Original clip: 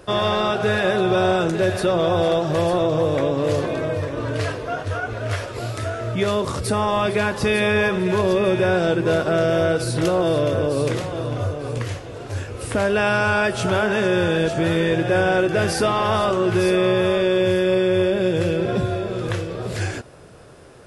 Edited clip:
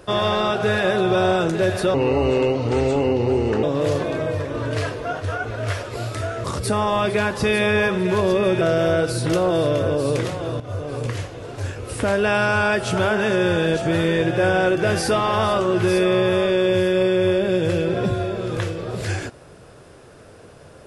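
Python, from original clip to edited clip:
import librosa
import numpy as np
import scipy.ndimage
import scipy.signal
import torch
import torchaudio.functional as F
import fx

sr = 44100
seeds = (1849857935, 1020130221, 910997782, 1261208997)

y = fx.edit(x, sr, fx.speed_span(start_s=1.94, length_s=1.32, speed=0.78),
    fx.cut(start_s=6.07, length_s=0.38),
    fx.cut(start_s=8.62, length_s=0.71),
    fx.fade_in_from(start_s=11.32, length_s=0.26, floor_db=-15.0), tone=tone)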